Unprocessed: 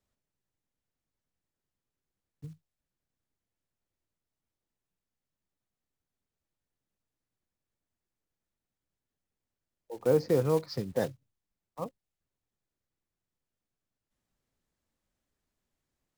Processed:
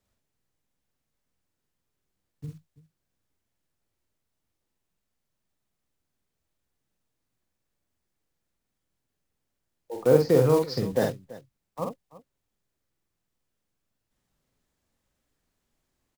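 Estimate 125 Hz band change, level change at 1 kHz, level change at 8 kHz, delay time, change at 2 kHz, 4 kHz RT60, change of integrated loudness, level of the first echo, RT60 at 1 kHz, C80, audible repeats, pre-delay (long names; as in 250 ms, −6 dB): +6.5 dB, +6.5 dB, +6.5 dB, 47 ms, +6.5 dB, no reverb audible, +5.5 dB, −4.0 dB, no reverb audible, no reverb audible, 2, no reverb audible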